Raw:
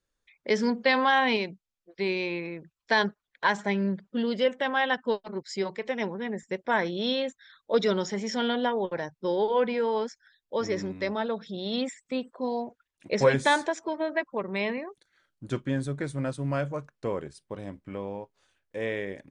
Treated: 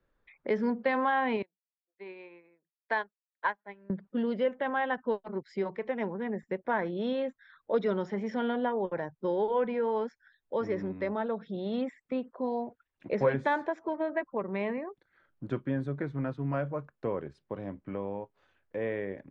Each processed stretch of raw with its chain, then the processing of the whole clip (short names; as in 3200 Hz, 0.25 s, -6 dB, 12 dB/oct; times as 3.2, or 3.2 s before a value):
1.42–3.9 weighting filter A + upward expander 2.5:1, over -45 dBFS
16.02–16.54 notch 570 Hz, Q 5 + careless resampling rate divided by 3×, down filtered, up hold
whole clip: LPF 1700 Hz 12 dB/oct; three-band squash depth 40%; gain -2.5 dB